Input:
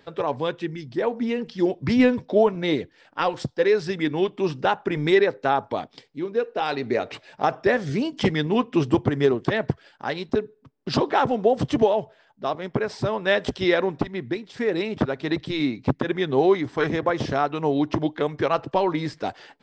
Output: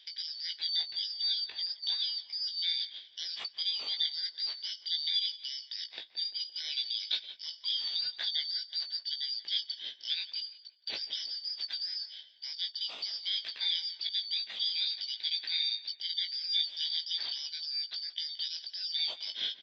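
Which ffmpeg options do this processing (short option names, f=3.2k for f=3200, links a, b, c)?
-filter_complex "[0:a]afftfilt=real='real(if(lt(b,272),68*(eq(floor(b/68),0)*3+eq(floor(b/68),1)*2+eq(floor(b/68),2)*1+eq(floor(b/68),3)*0)+mod(b,68),b),0)':imag='imag(if(lt(b,272),68*(eq(floor(b/68),0)*3+eq(floor(b/68),1)*2+eq(floor(b/68),2)*1+eq(floor(b/68),3)*0)+mod(b,68),b),0)':win_size=2048:overlap=0.75,highpass=f=450:p=1,agate=range=-9dB:threshold=-46dB:ratio=16:detection=peak,areverse,acompressor=threshold=-33dB:ratio=6,areverse,alimiter=level_in=9dB:limit=-24dB:level=0:latency=1:release=144,volume=-9dB,lowpass=f=3.6k:t=q:w=9.1,asplit=2[a][b];[b]adelay=18,volume=-5.5dB[c];[a][c]amix=inputs=2:normalize=0,asplit=2[d][e];[e]adelay=172,lowpass=f=2.2k:p=1,volume=-13dB,asplit=2[f][g];[g]adelay=172,lowpass=f=2.2k:p=1,volume=0.49,asplit=2[h][i];[i]adelay=172,lowpass=f=2.2k:p=1,volume=0.49,asplit=2[j][k];[k]adelay=172,lowpass=f=2.2k:p=1,volume=0.49,asplit=2[l][m];[m]adelay=172,lowpass=f=2.2k:p=1,volume=0.49[n];[d][f][h][j][l][n]amix=inputs=6:normalize=0,volume=2dB"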